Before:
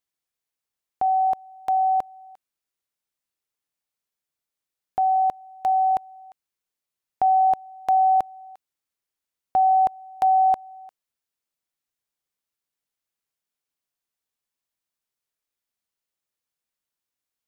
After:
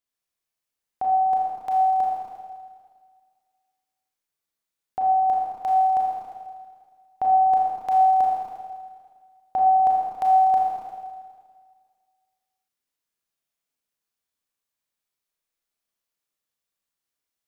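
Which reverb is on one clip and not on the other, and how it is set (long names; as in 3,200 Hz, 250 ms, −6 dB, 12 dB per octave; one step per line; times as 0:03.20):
four-comb reverb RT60 1.8 s, combs from 27 ms, DRR −4 dB
level −4 dB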